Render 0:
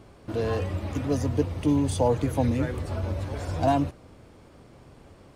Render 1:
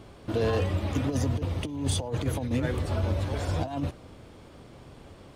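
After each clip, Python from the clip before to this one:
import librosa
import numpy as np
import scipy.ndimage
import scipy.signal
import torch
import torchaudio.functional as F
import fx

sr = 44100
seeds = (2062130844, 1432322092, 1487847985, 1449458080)

y = fx.peak_eq(x, sr, hz=3400.0, db=4.5, octaves=0.55)
y = fx.over_compress(y, sr, threshold_db=-26.0, ratio=-0.5)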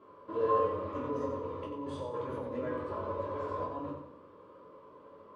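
y = fx.double_bandpass(x, sr, hz=730.0, octaves=0.98)
y = fx.echo_feedback(y, sr, ms=91, feedback_pct=38, wet_db=-7.5)
y = fx.room_shoebox(y, sr, seeds[0], volume_m3=310.0, walls='furnished', distance_m=3.0)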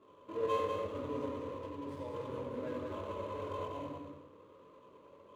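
y = scipy.ndimage.median_filter(x, 25, mode='constant')
y = y + 10.0 ** (-5.0 / 20.0) * np.pad(y, (int(192 * sr / 1000.0), 0))[:len(y)]
y = y * 10.0 ** (-4.0 / 20.0)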